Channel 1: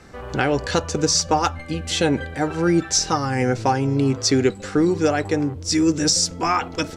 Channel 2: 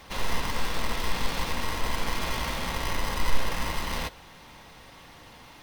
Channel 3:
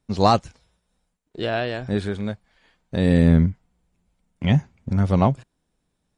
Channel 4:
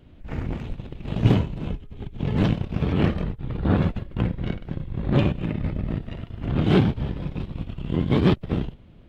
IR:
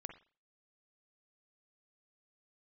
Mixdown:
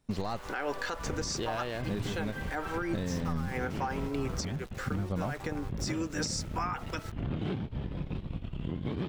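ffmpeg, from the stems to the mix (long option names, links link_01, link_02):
-filter_complex "[0:a]highpass=260,equalizer=frequency=1300:width_type=o:width=1.8:gain=10.5,adelay=150,volume=-12dB[link_01];[1:a]acompressor=threshold=-24dB:ratio=6,lowpass=3400,volume=-15dB[link_02];[2:a]aeval=exprs='if(lt(val(0),0),0.708*val(0),val(0))':channel_layout=same,alimiter=limit=-13.5dB:level=0:latency=1:release=332,volume=3dB,asplit=2[link_03][link_04];[3:a]adelay=750,volume=-4.5dB[link_05];[link_04]apad=whole_len=313980[link_06];[link_01][link_06]sidechaincompress=threshold=-31dB:ratio=8:attack=47:release=151[link_07];[link_03][link_05]amix=inputs=2:normalize=0,acompressor=threshold=-30dB:ratio=6,volume=0dB[link_08];[link_07][link_02]amix=inputs=2:normalize=0,aeval=exprs='val(0)*gte(abs(val(0)),0.00501)':channel_layout=same,alimiter=limit=-22dB:level=0:latency=1:release=96,volume=0dB[link_09];[link_08][link_09]amix=inputs=2:normalize=0,alimiter=limit=-22.5dB:level=0:latency=1:release=343"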